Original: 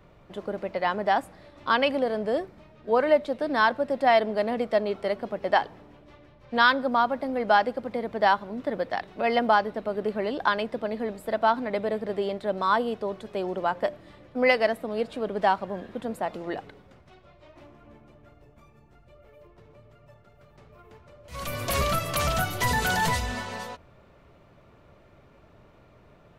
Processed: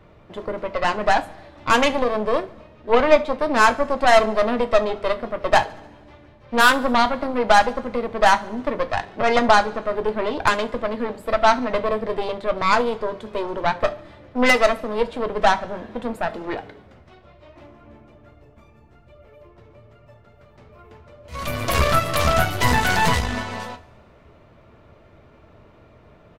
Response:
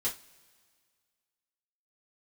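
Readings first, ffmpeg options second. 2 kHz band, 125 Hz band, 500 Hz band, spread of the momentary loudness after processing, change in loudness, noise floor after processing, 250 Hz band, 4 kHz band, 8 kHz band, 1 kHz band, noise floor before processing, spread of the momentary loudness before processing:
+6.0 dB, +6.5 dB, +5.0 dB, 14 LU, +5.5 dB, −51 dBFS, +5.0 dB, +6.5 dB, +6.0 dB, +5.5 dB, −56 dBFS, 13 LU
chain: -filter_complex "[0:a]highshelf=frequency=6700:gain=-8,aeval=exprs='0.447*(cos(1*acos(clip(val(0)/0.447,-1,1)))-cos(1*PI/2))+0.0631*(cos(8*acos(clip(val(0)/0.447,-1,1)))-cos(8*PI/2))':channel_layout=same,aecho=1:1:71|142|213|284:0.0708|0.0418|0.0246|0.0145,asplit=2[link_01][link_02];[1:a]atrim=start_sample=2205[link_03];[link_02][link_03]afir=irnorm=-1:irlink=0,volume=-10dB[link_04];[link_01][link_04]amix=inputs=2:normalize=0,volume=3dB"

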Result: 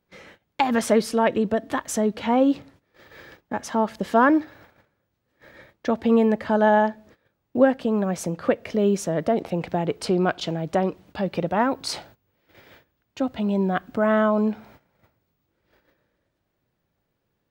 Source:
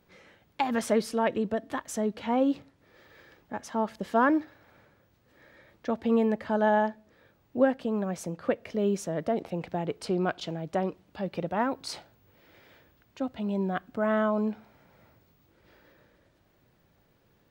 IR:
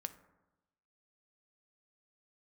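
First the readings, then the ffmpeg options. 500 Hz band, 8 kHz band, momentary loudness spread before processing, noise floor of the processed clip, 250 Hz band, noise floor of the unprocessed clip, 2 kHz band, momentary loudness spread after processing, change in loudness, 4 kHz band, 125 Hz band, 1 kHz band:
+6.0 dB, +7.5 dB, 11 LU, −76 dBFS, +6.5 dB, −67 dBFS, +6.0 dB, 10 LU, +6.5 dB, +7.5 dB, +6.5 dB, +6.0 dB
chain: -filter_complex "[0:a]agate=range=-19dB:threshold=-56dB:ratio=16:detection=peak,asplit=2[link_01][link_02];[link_02]acompressor=threshold=-37dB:ratio=6,volume=-3dB[link_03];[link_01][link_03]amix=inputs=2:normalize=0,volume=5dB"

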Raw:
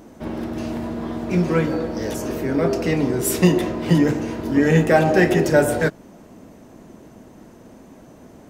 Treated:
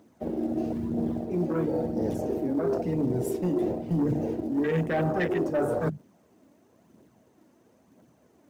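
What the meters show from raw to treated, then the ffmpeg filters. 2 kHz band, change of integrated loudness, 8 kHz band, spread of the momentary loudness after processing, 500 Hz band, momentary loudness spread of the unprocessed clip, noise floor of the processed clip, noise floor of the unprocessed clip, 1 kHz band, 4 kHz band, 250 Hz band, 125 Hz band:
−14.0 dB, −8.5 dB, −19.5 dB, 4 LU, −8.0 dB, 12 LU, −63 dBFS, −46 dBFS, −9.5 dB, −17.5 dB, −7.5 dB, −9.0 dB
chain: -af "aphaser=in_gain=1:out_gain=1:delay=3.7:decay=0.44:speed=1:type=triangular,acrusher=bits=5:mode=log:mix=0:aa=0.000001,bandreject=frequency=50:width_type=h:width=6,bandreject=frequency=100:width_type=h:width=6,bandreject=frequency=150:width_type=h:width=6,afwtdn=0.0891,highpass=frequency=79:width=0.5412,highpass=frequency=79:width=1.3066,asoftclip=type=tanh:threshold=-9dB,areverse,acompressor=threshold=-24dB:ratio=6,areverse"

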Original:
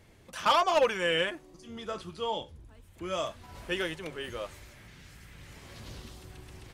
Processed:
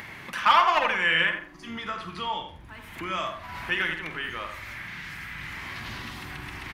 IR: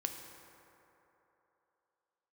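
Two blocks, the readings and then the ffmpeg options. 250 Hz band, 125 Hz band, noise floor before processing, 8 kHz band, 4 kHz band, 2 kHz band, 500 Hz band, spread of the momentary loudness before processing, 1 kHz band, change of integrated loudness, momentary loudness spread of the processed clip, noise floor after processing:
+1.0 dB, +3.5 dB, −57 dBFS, −2.0 dB, +4.0 dB, +10.0 dB, −5.0 dB, 23 LU, +6.0 dB, +3.0 dB, 17 LU, −46 dBFS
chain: -filter_complex "[0:a]equalizer=frequency=500:width_type=o:width=1:gain=-11,equalizer=frequency=1000:width_type=o:width=1:gain=6,equalizer=frequency=2000:width_type=o:width=1:gain=10,equalizer=frequency=8000:width_type=o:width=1:gain=-8,acrossover=split=130[link_01][link_02];[link_02]acompressor=mode=upward:threshold=-29dB:ratio=2.5[link_03];[link_01][link_03]amix=inputs=2:normalize=0,asplit=2[link_04][link_05];[link_05]adelay=48,volume=-10.5dB[link_06];[link_04][link_06]amix=inputs=2:normalize=0,asplit=2[link_07][link_08];[link_08]adelay=85,lowpass=frequency=1800:poles=1,volume=-6dB,asplit=2[link_09][link_10];[link_10]adelay=85,lowpass=frequency=1800:poles=1,volume=0.33,asplit=2[link_11][link_12];[link_12]adelay=85,lowpass=frequency=1800:poles=1,volume=0.33,asplit=2[link_13][link_14];[link_14]adelay=85,lowpass=frequency=1800:poles=1,volume=0.33[link_15];[link_07][link_09][link_11][link_13][link_15]amix=inputs=5:normalize=0"

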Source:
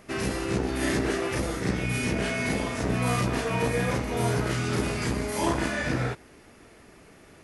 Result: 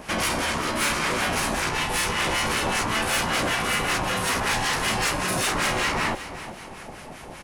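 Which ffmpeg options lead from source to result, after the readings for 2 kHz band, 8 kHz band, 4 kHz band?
+7.0 dB, +9.0 dB, +10.5 dB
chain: -filter_complex "[0:a]afftfilt=real='re*lt(hypot(re,im),0.126)':imag='im*lt(hypot(re,im),0.126)':win_size=1024:overlap=0.75,acrossover=split=660[link_01][link_02];[link_01]aeval=exprs='val(0)*(1-0.7/2+0.7/2*cos(2*PI*5.2*n/s))':channel_layout=same[link_03];[link_02]aeval=exprs='val(0)*(1-0.7/2-0.7/2*cos(2*PI*5.2*n/s))':channel_layout=same[link_04];[link_03][link_04]amix=inputs=2:normalize=0,asplit=2[link_05][link_06];[link_06]aeval=exprs='0.106*sin(PI/2*2.51*val(0)/0.106)':channel_layout=same,volume=-4dB[link_07];[link_05][link_07]amix=inputs=2:normalize=0,aeval=exprs='val(0)*sin(2*PI*440*n/s)':channel_layout=same,asoftclip=type=tanh:threshold=-23.5dB,asplit=2[link_08][link_09];[link_09]aecho=0:1:373|746|1119|1492:0.2|0.0738|0.0273|0.0101[link_10];[link_08][link_10]amix=inputs=2:normalize=0,volume=7dB"

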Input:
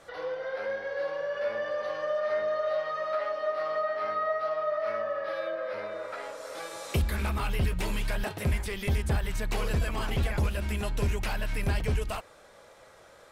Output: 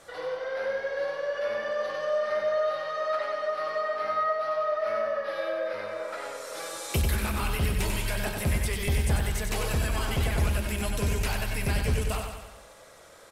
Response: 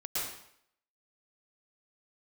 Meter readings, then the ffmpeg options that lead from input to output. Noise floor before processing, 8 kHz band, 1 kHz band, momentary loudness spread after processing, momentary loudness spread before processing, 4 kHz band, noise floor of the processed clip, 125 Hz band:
−54 dBFS, +8.0 dB, +2.0 dB, 7 LU, 6 LU, +4.0 dB, −50 dBFS, +2.0 dB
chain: -af "equalizer=frequency=11000:width_type=o:width=1.9:gain=7.5,aecho=1:1:94|188|282|376|470|564|658:0.562|0.315|0.176|0.0988|0.0553|0.031|0.0173"

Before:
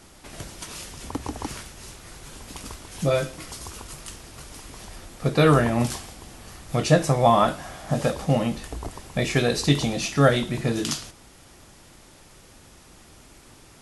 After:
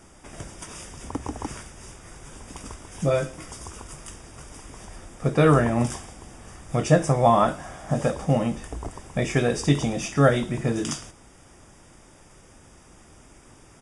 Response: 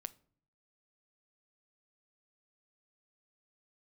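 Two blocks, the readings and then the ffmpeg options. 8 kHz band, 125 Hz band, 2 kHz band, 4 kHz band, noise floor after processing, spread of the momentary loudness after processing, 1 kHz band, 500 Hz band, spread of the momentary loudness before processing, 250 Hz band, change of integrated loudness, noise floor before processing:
−2.0 dB, 0.0 dB, −2.0 dB, −6.5 dB, −52 dBFS, 23 LU, −0.5 dB, 0.0 dB, 23 LU, 0.0 dB, −0.5 dB, −51 dBFS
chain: -af "asuperstop=centerf=4200:order=20:qfactor=6,aresample=22050,aresample=44100,equalizer=frequency=3600:width_type=o:width=1.2:gain=-6.5"

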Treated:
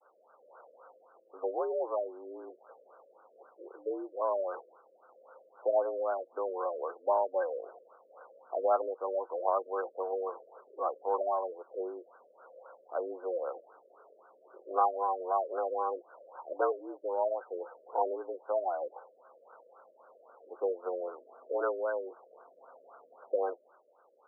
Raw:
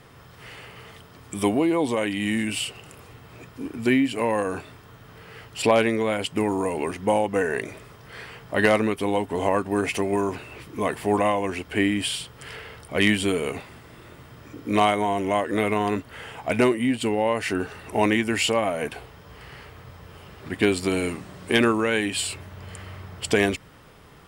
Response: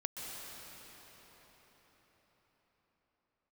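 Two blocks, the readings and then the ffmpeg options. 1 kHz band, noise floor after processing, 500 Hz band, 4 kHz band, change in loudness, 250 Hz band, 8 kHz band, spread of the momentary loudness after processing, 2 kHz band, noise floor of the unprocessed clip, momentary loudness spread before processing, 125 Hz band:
−6.5 dB, −65 dBFS, −7.5 dB, below −40 dB, −10.0 dB, −25.0 dB, below −40 dB, 17 LU, −23.5 dB, −49 dBFS, 19 LU, below −40 dB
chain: -af "agate=range=-33dB:threshold=-46dB:ratio=3:detection=peak,highpass=frequency=410:width_type=q:width=0.5412,highpass=frequency=410:width_type=q:width=1.307,lowpass=frequency=2700:width_type=q:width=0.5176,lowpass=frequency=2700:width_type=q:width=0.7071,lowpass=frequency=2700:width_type=q:width=1.932,afreqshift=75,afftfilt=real='re*lt(b*sr/1024,630*pow(1600/630,0.5+0.5*sin(2*PI*3.8*pts/sr)))':imag='im*lt(b*sr/1024,630*pow(1600/630,0.5+0.5*sin(2*PI*3.8*pts/sr)))':win_size=1024:overlap=0.75,volume=-5.5dB"

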